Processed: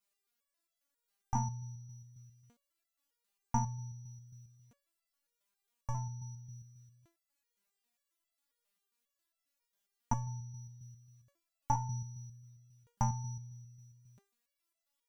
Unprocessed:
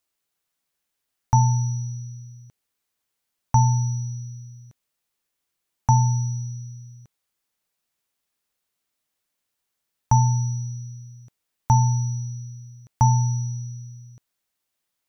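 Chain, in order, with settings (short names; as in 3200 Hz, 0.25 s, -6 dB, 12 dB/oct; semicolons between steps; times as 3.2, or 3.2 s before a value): stepped resonator 7.4 Hz 200–670 Hz; gain +8.5 dB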